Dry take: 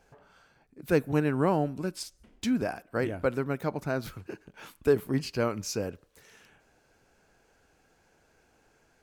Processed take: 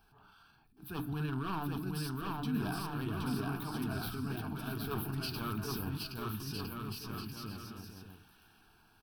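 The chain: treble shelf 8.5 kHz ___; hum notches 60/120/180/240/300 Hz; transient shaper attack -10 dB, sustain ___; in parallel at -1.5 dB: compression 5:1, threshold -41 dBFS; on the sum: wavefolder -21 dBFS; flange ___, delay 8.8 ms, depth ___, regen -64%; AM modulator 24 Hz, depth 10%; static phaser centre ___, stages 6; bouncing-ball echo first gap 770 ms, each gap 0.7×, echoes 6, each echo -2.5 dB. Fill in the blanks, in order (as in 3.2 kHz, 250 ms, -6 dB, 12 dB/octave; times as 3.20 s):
+9 dB, +5 dB, 1.6 Hz, 1.3 ms, 2 kHz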